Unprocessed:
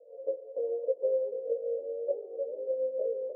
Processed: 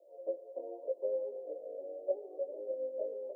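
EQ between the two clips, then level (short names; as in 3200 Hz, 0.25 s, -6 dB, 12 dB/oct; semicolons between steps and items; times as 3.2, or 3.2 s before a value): fixed phaser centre 320 Hz, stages 8; +3.5 dB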